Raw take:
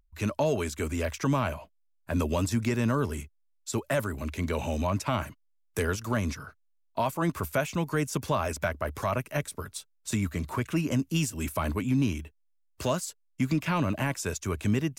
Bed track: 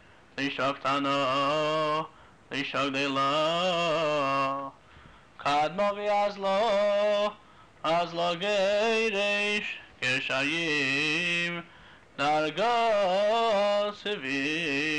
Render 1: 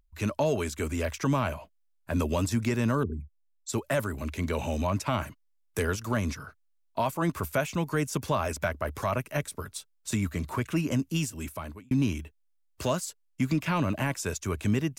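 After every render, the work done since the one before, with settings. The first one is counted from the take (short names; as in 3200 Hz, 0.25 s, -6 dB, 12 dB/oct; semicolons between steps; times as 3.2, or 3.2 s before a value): 3.03–3.69 formant sharpening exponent 3; 10.75–11.91 fade out equal-power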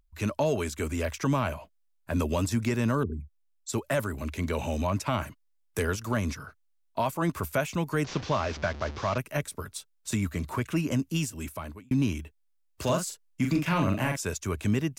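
8.04–9.18 delta modulation 32 kbps, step -34 dBFS; 12.83–14.17 doubler 41 ms -4 dB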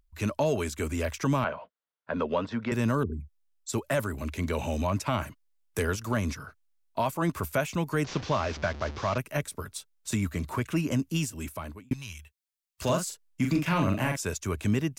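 1.44–2.72 speaker cabinet 200–3600 Hz, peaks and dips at 320 Hz -8 dB, 490 Hz +6 dB, 990 Hz +3 dB, 1400 Hz +5 dB, 2500 Hz -5 dB; 11.93–12.82 passive tone stack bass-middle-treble 10-0-10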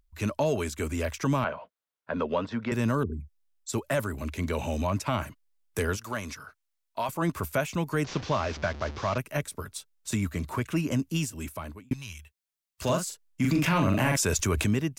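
5.97–7.09 low shelf 410 Hz -11.5 dB; 13.44–14.66 fast leveller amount 70%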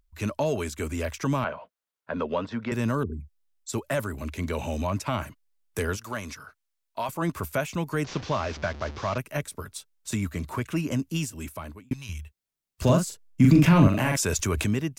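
12.09–13.88 low shelf 440 Hz +11 dB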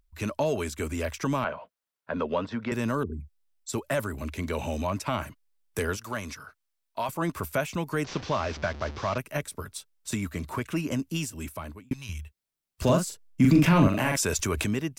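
notch 6700 Hz, Q 26; dynamic EQ 110 Hz, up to -5 dB, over -33 dBFS, Q 0.83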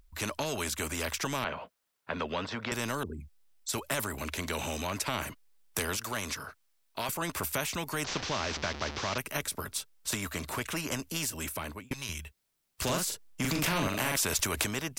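spectral compressor 2:1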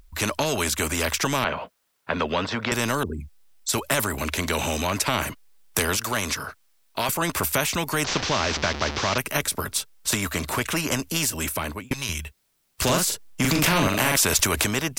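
gain +9 dB; limiter -3 dBFS, peak gain reduction 3 dB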